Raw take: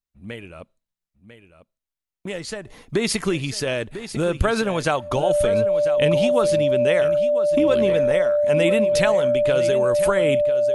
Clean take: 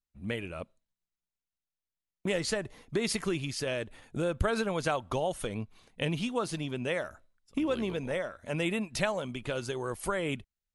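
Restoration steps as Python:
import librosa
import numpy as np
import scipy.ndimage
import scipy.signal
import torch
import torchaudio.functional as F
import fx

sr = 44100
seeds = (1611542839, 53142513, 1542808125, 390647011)

y = fx.notch(x, sr, hz=590.0, q=30.0)
y = fx.fix_echo_inverse(y, sr, delay_ms=997, level_db=-12.0)
y = fx.fix_level(y, sr, at_s=2.67, step_db=-8.5)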